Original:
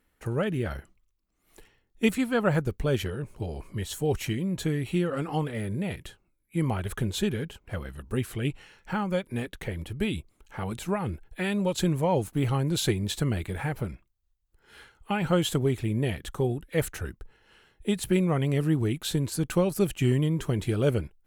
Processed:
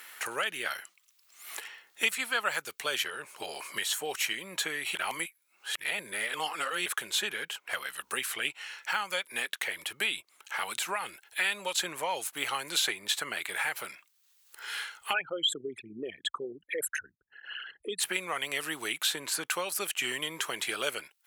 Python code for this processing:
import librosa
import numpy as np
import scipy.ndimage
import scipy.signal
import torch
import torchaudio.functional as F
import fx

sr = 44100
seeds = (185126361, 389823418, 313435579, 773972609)

y = fx.envelope_sharpen(x, sr, power=3.0, at=(15.12, 17.99), fade=0.02)
y = fx.edit(y, sr, fx.reverse_span(start_s=4.95, length_s=1.91), tone=tone)
y = scipy.signal.sosfilt(scipy.signal.butter(2, 1300.0, 'highpass', fs=sr, output='sos'), y)
y = fx.band_squash(y, sr, depth_pct=70)
y = y * librosa.db_to_amplitude(7.5)